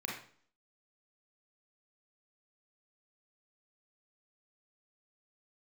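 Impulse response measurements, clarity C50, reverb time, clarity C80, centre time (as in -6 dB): 3.0 dB, 0.50 s, 8.5 dB, 40 ms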